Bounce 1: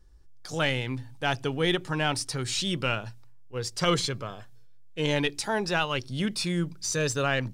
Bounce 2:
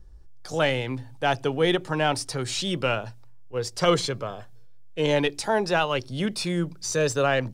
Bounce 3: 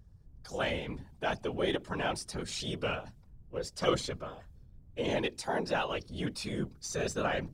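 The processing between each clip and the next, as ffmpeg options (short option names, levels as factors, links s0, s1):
-filter_complex "[0:a]acrossover=split=180|1100|6600[s0][s1][s2][s3];[s0]acompressor=mode=upward:threshold=0.0126:ratio=2.5[s4];[s4][s1][s2][s3]amix=inputs=4:normalize=0,equalizer=f=600:w=0.84:g=7"
-af "afftfilt=real='hypot(re,im)*cos(2*PI*random(0))':imag='hypot(re,im)*sin(2*PI*random(1))':win_size=512:overlap=0.75,volume=0.708"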